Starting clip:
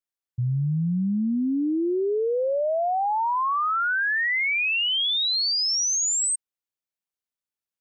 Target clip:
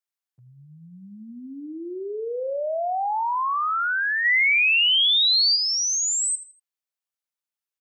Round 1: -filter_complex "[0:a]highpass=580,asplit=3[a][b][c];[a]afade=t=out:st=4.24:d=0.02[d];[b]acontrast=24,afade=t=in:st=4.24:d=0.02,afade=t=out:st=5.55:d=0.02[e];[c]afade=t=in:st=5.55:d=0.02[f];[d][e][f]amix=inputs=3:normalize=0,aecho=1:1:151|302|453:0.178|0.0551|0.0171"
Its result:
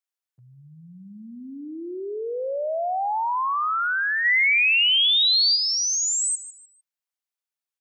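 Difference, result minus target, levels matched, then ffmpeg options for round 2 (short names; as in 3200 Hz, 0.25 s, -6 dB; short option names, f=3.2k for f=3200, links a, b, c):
echo 71 ms late
-filter_complex "[0:a]highpass=580,asplit=3[a][b][c];[a]afade=t=out:st=4.24:d=0.02[d];[b]acontrast=24,afade=t=in:st=4.24:d=0.02,afade=t=out:st=5.55:d=0.02[e];[c]afade=t=in:st=5.55:d=0.02[f];[d][e][f]amix=inputs=3:normalize=0,aecho=1:1:80|160|240:0.178|0.0551|0.0171"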